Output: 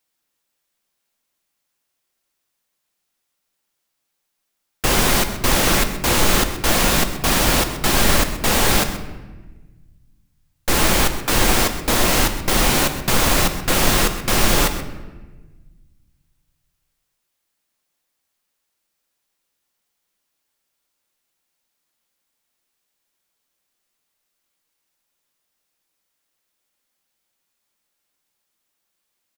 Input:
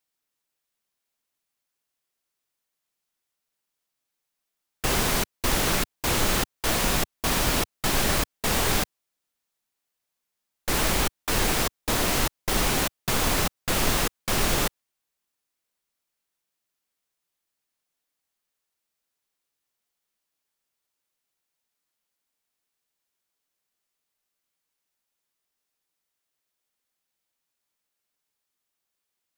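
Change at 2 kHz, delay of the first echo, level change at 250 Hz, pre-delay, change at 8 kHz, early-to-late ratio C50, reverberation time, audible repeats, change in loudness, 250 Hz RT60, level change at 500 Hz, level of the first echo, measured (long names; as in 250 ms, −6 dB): +7.5 dB, 129 ms, +8.0 dB, 4 ms, +7.0 dB, 9.5 dB, 1.3 s, 1, +7.0 dB, 1.9 s, +7.5 dB, −13.5 dB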